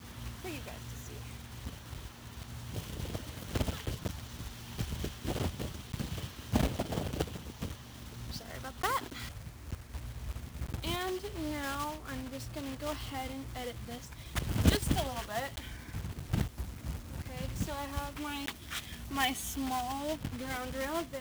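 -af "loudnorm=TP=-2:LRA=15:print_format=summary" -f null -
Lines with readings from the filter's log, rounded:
Input Integrated:    -37.5 LUFS
Input True Peak:     -11.0 dBTP
Input LRA:             5.1 LU
Input Threshold:     -47.5 LUFS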